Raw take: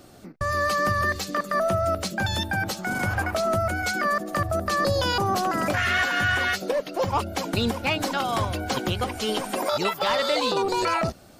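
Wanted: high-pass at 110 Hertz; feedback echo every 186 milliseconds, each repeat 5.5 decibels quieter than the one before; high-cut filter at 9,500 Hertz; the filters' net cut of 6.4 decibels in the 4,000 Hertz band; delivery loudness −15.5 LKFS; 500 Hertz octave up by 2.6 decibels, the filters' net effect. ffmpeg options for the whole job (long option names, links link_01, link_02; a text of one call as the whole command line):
ffmpeg -i in.wav -af "highpass=110,lowpass=9500,equalizer=frequency=500:width_type=o:gain=3.5,equalizer=frequency=4000:width_type=o:gain=-8.5,aecho=1:1:186|372|558|744|930|1116|1302:0.531|0.281|0.149|0.079|0.0419|0.0222|0.0118,volume=8dB" out.wav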